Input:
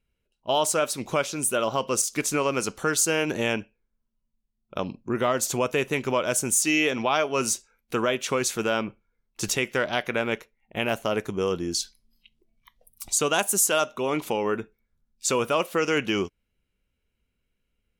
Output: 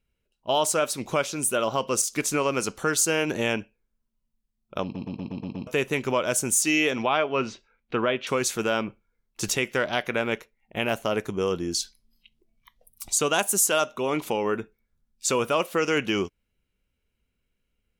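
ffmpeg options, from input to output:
-filter_complex "[0:a]asettb=1/sr,asplit=3[a][b][c];[a]atrim=end=7.064[d];[b]atrim=start=7.06:end=8.27,asetpts=PTS-STARTPTS,afade=t=in:d=0.004:c=qsin,afade=t=out:st=1.206:d=0.004:c=qsin,lowpass=f=3.7k:w=0.5412,lowpass=f=3.7k:w=1.3066[e];[c]atrim=start=8.266[f];[d][e]acrossfade=d=0.004:c1=hsin:c2=qsin[g];[g][f]acrossfade=d=0.004:c1=qsin:c2=hsin,asplit=8[h][i][j][k][l][m][n][o];[h]atrim=end=4.952[p];[i]atrim=start=4.828:end=4.952[q];[j]atrim=start=4.828:end=4.952[r];[k]atrim=start=4.828:end=4.952[s];[l]atrim=start=4.828:end=4.952[t];[m]atrim=start=4.828:end=4.952[u];[n]atrim=start=4.828:end=4.952[v];[o]atrim=start=5.668[w];[p][q]acrossfade=d=0.004:c1=hsin:c2=hsin[x];[x][r]acrossfade=d=0.004:c1=hsin:c2=hsin[y];[y][s]acrossfade=d=0.004:c1=hsin:c2=hsin[z];[z][t]acrossfade=d=0.004:c1=hsin:c2=hsin[aa];[aa][u]acrossfade=d=0.004:c1=hsin:c2=hsin[ab];[ab][v]acrossfade=d=0.004:c1=hsin:c2=hsin[ac];[ac][w]acrossfade=d=0.004:c1=hsin:c2=hsin"

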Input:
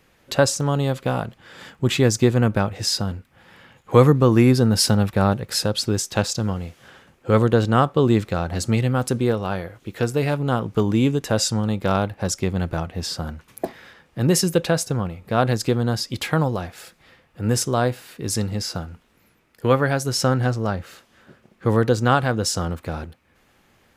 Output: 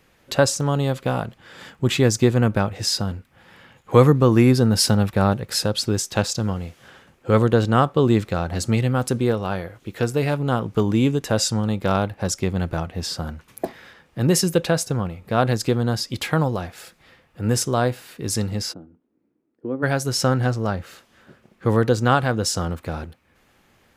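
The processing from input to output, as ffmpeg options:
-filter_complex "[0:a]asplit=3[a][b][c];[a]afade=t=out:st=18.72:d=0.02[d];[b]bandpass=f=300:t=q:w=3.5,afade=t=in:st=18.72:d=0.02,afade=t=out:st=19.82:d=0.02[e];[c]afade=t=in:st=19.82:d=0.02[f];[d][e][f]amix=inputs=3:normalize=0"

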